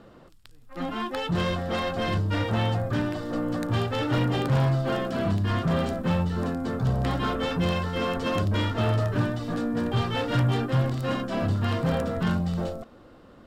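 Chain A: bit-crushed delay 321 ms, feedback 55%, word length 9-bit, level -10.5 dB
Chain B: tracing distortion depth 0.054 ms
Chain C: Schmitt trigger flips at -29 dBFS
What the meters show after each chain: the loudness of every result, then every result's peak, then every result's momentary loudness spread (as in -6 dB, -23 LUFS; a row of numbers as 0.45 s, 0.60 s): -26.0 LUFS, -26.5 LUFS, -27.5 LUFS; -11.0 dBFS, -12.5 dBFS, -20.0 dBFS; 5 LU, 5 LU, 1 LU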